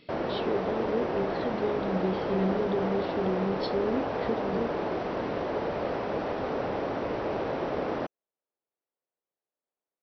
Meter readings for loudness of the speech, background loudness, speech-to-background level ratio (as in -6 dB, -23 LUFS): -32.5 LUFS, -31.5 LUFS, -1.0 dB